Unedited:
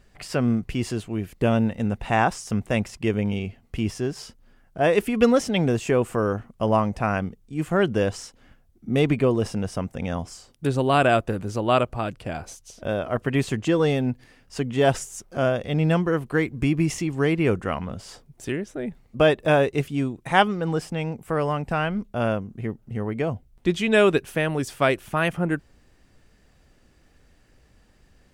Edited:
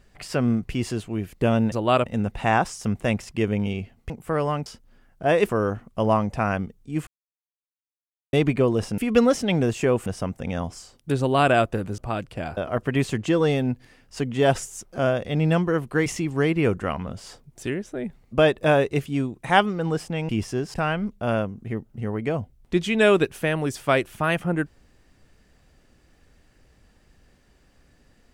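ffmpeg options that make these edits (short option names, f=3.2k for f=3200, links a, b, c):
-filter_complex "[0:a]asplit=15[a][b][c][d][e][f][g][h][i][j][k][l][m][n][o];[a]atrim=end=1.722[p];[b]atrim=start=11.528:end=11.872[q];[c]atrim=start=1.718:end=3.762[r];[d]atrim=start=21.108:end=21.672[s];[e]atrim=start=4.208:end=5.042[t];[f]atrim=start=6.118:end=7.7,asetpts=PTS-STARTPTS,afade=t=out:st=1.578:d=0.004:c=hsin[u];[g]atrim=start=7.7:end=8.96,asetpts=PTS-STARTPTS,volume=0[v];[h]atrim=start=8.96:end=9.612,asetpts=PTS-STARTPTS,afade=t=in:d=0.004:c=hsin[w];[i]atrim=start=5.038:end=6.122[x];[j]atrim=start=9.608:end=11.532[y];[k]atrim=start=11.868:end=12.462[z];[l]atrim=start=12.958:end=16.452[aa];[m]atrim=start=16.878:end=21.112[ab];[n]atrim=start=3.758:end=4.212[ac];[o]atrim=start=21.668[ad];[p][q]acrossfade=d=0.004:c1=hsin:c2=hsin[ae];[ae][r]acrossfade=d=0.004:c1=hsin:c2=hsin[af];[af][s]acrossfade=d=0.004:c1=hsin:c2=hsin[ag];[ag][t]acrossfade=d=0.004:c1=hsin:c2=hsin[ah];[u][v][w]concat=n=3:v=0:a=1[ai];[ah][ai]acrossfade=d=0.004:c1=hsin:c2=hsin[aj];[aj][x]acrossfade=d=0.004:c1=hsin:c2=hsin[ak];[ak][y]acrossfade=d=0.004:c1=hsin:c2=hsin[al];[al][z]acrossfade=d=0.004:c1=hsin:c2=hsin[am];[am][aa]acrossfade=d=0.004:c1=hsin:c2=hsin[an];[an][ab]acrossfade=d=0.004:c1=hsin:c2=hsin[ao];[ao][ac]acrossfade=d=0.004:c1=hsin:c2=hsin[ap];[ap][ad]acrossfade=d=0.004:c1=hsin:c2=hsin"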